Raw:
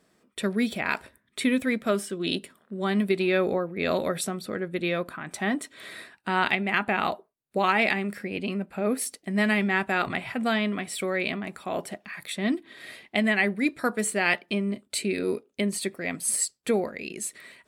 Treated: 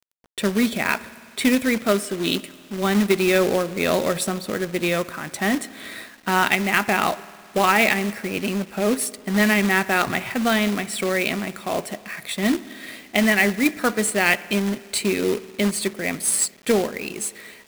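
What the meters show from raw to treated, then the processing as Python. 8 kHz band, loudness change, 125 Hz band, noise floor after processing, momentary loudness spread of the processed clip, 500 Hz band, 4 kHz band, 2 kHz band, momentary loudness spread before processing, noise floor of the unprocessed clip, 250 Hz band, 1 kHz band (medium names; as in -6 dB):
+6.5 dB, +5.5 dB, +5.5 dB, -46 dBFS, 10 LU, +5.5 dB, +6.5 dB, +5.5 dB, 10 LU, -70 dBFS, +5.5 dB, +5.5 dB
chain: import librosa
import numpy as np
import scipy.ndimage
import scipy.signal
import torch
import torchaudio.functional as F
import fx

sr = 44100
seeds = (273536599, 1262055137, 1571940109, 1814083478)

y = fx.rev_spring(x, sr, rt60_s=2.1, pass_ms=(53,), chirp_ms=60, drr_db=17.5)
y = fx.quant_companded(y, sr, bits=4)
y = y * 10.0 ** (5.0 / 20.0)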